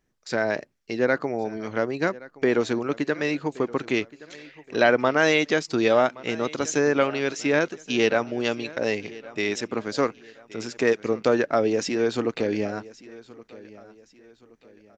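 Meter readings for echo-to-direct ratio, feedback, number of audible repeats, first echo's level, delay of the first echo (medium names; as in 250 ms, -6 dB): -19.5 dB, 38%, 2, -20.0 dB, 1122 ms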